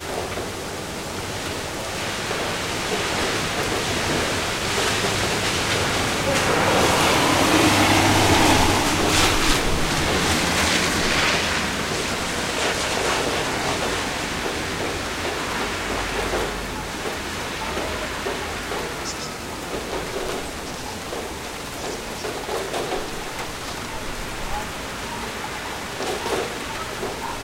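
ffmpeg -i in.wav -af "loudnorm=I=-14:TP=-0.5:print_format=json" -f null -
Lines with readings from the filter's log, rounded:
"input_i" : "-22.6",
"input_tp" : "-3.6",
"input_lra" : "11.1",
"input_thresh" : "-32.6",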